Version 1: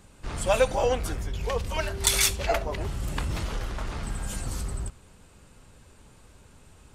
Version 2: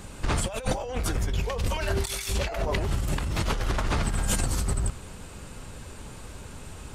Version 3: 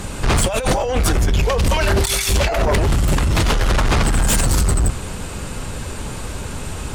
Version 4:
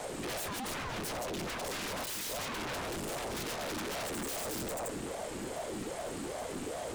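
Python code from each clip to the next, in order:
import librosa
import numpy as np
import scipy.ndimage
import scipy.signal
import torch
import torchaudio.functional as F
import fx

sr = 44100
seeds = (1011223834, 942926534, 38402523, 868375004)

y1 = fx.over_compress(x, sr, threshold_db=-34.0, ratio=-1.0)
y1 = F.gain(torch.from_numpy(y1), 6.5).numpy()
y2 = fx.fold_sine(y1, sr, drive_db=10, ceiling_db=-11.5)
y3 = 10.0 ** (-22.0 / 20.0) * (np.abs((y2 / 10.0 ** (-22.0 / 20.0) + 3.0) % 4.0 - 2.0) - 1.0)
y3 = fx.ring_lfo(y3, sr, carrier_hz=460.0, swing_pct=45, hz=2.5)
y3 = F.gain(torch.from_numpy(y3), -8.5).numpy()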